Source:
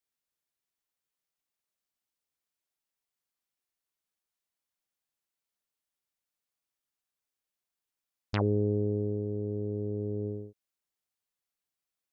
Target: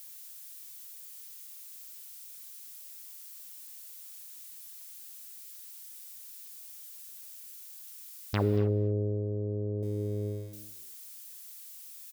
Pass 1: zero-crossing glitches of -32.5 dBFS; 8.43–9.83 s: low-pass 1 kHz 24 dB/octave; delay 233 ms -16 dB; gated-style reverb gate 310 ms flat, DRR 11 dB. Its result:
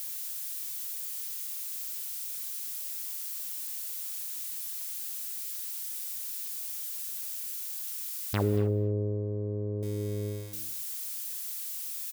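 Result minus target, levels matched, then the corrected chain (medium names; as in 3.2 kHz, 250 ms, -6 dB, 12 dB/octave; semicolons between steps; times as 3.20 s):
zero-crossing glitches: distortion +10 dB
zero-crossing glitches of -43 dBFS; 8.43–9.83 s: low-pass 1 kHz 24 dB/octave; delay 233 ms -16 dB; gated-style reverb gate 310 ms flat, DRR 11 dB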